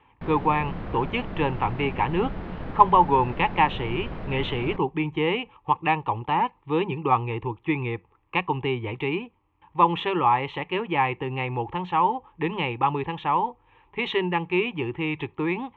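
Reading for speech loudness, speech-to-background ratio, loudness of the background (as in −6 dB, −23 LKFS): −25.5 LKFS, 10.5 dB, −36.0 LKFS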